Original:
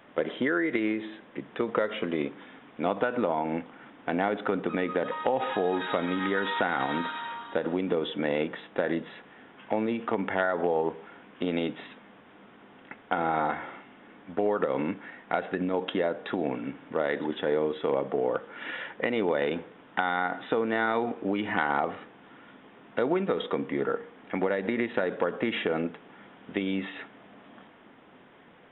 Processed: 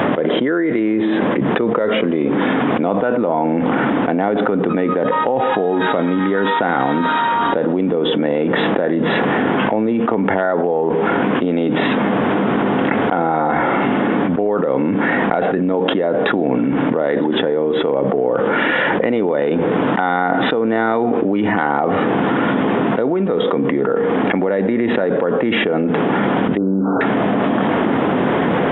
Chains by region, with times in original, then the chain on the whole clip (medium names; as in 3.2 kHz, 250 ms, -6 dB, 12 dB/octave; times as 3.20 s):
26.57–27.01 s: brick-wall FIR low-pass 1.6 kHz + doubling 47 ms -10.5 dB
whole clip: high-pass 99 Hz; tilt shelf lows +6.5 dB, about 1.4 kHz; level flattener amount 100%; trim +1 dB